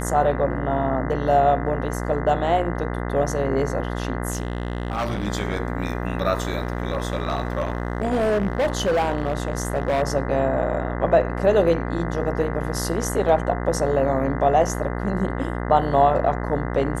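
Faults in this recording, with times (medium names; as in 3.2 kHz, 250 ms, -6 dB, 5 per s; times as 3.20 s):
buzz 60 Hz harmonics 34 -27 dBFS
4.30–5.28 s: clipped -20.5 dBFS
6.62–10.03 s: clipped -17 dBFS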